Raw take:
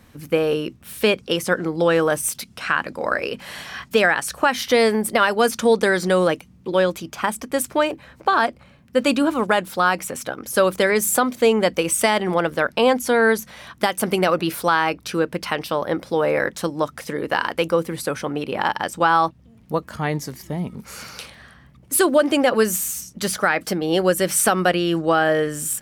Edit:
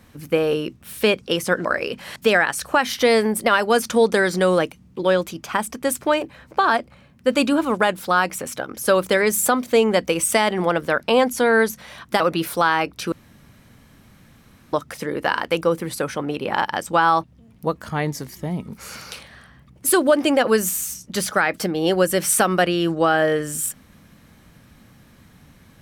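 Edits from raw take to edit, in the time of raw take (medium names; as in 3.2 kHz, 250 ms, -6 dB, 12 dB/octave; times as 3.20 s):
1.65–3.06 s: delete
3.57–3.85 s: delete
13.89–14.27 s: delete
15.19–16.80 s: room tone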